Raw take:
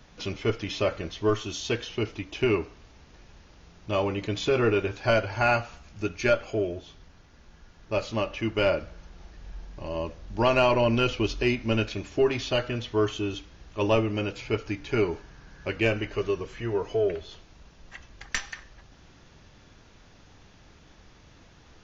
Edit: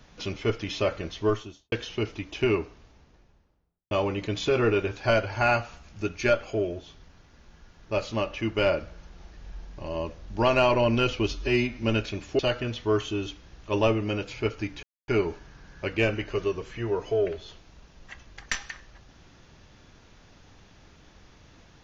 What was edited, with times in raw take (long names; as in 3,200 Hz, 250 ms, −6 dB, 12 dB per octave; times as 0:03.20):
0:01.23–0:01.72: fade out and dull
0:02.43–0:03.91: fade out and dull
0:11.32–0:11.66: time-stretch 1.5×
0:12.22–0:12.47: remove
0:14.91: splice in silence 0.25 s